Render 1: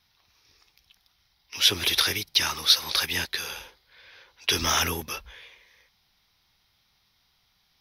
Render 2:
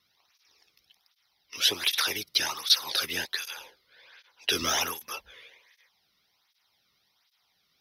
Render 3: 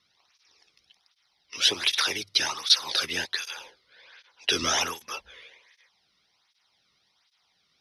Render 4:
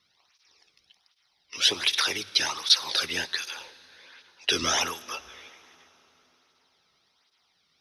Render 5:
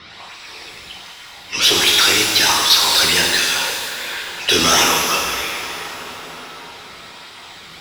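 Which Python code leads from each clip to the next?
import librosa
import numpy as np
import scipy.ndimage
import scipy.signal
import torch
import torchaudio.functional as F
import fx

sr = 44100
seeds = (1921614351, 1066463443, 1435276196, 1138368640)

y1 = fx.flanger_cancel(x, sr, hz=1.3, depth_ms=1.3)
y2 = scipy.signal.sosfilt(scipy.signal.butter(4, 9400.0, 'lowpass', fs=sr, output='sos'), y1)
y2 = fx.hum_notches(y2, sr, base_hz=50, count=2)
y2 = F.gain(torch.from_numpy(y2), 2.0).numpy()
y3 = fx.rev_plate(y2, sr, seeds[0], rt60_s=4.3, hf_ratio=0.8, predelay_ms=0, drr_db=18.5)
y4 = fx.power_curve(y3, sr, exponent=0.5)
y4 = fx.env_lowpass(y4, sr, base_hz=2800.0, full_db=-15.5)
y4 = fx.rev_shimmer(y4, sr, seeds[1], rt60_s=1.5, semitones=12, shimmer_db=-8, drr_db=0.5)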